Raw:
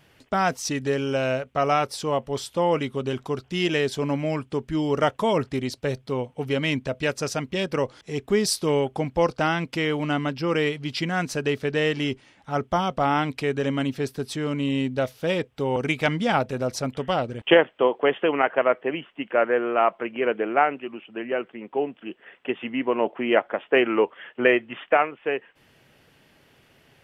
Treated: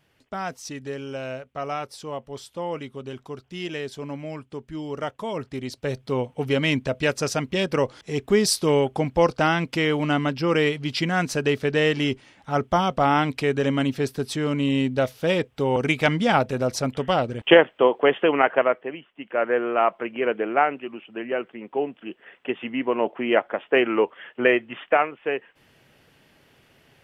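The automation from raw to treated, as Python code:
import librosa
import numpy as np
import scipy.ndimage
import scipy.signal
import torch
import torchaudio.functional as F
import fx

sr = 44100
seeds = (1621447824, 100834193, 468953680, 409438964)

y = fx.gain(x, sr, db=fx.line((5.3, -8.0), (6.17, 2.5), (18.57, 2.5), (19.05, -9.5), (19.52, 0.0)))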